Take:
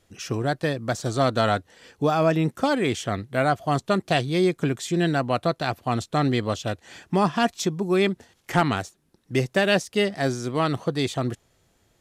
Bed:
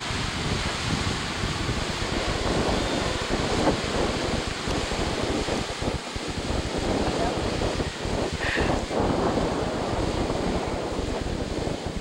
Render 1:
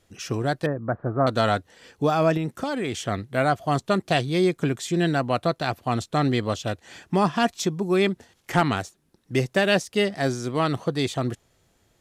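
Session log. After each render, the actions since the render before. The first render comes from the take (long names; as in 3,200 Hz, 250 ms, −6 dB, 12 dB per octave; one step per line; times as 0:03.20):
0:00.66–0:01.27: Butterworth low-pass 1,600 Hz
0:02.37–0:03.07: downward compressor 5 to 1, threshold −23 dBFS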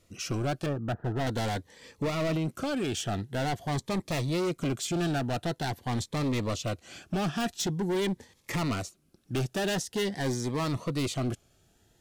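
gain into a clipping stage and back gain 25.5 dB
phaser whose notches keep moving one way rising 0.46 Hz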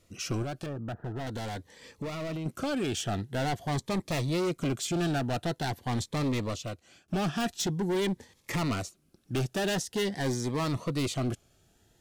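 0:00.43–0:02.46: downward compressor 4 to 1, threshold −33 dBFS
0:06.28–0:07.08: fade out, to −18.5 dB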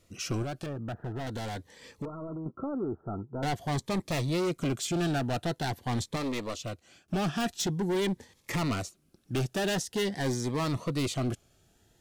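0:02.05–0:03.43: Chebyshev low-pass with heavy ripple 1,400 Hz, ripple 6 dB
0:06.16–0:06.59: parametric band 120 Hz −12.5 dB 1.3 octaves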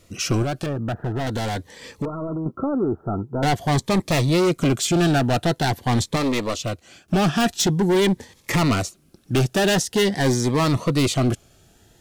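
level +10.5 dB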